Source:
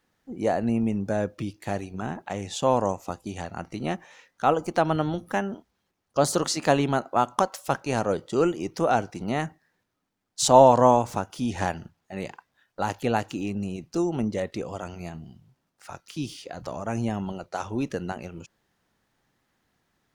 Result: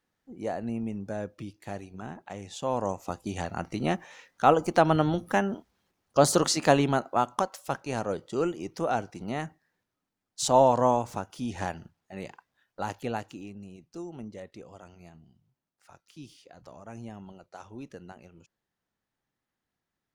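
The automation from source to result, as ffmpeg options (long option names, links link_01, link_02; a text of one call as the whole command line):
ffmpeg -i in.wav -af "volume=1.5dB,afade=type=in:start_time=2.69:duration=0.7:silence=0.334965,afade=type=out:start_time=6.43:duration=1.08:silence=0.446684,afade=type=out:start_time=12.88:duration=0.67:silence=0.375837" out.wav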